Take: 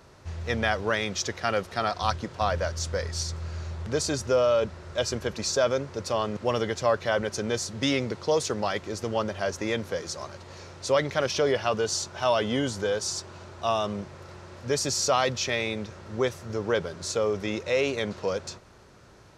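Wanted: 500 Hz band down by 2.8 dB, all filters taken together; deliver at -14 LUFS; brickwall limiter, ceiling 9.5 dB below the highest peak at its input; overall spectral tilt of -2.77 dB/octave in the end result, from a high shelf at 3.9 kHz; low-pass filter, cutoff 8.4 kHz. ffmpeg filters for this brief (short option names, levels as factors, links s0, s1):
-af "lowpass=8400,equalizer=f=500:t=o:g=-3.5,highshelf=f=3900:g=9,volume=5.31,alimiter=limit=0.841:level=0:latency=1"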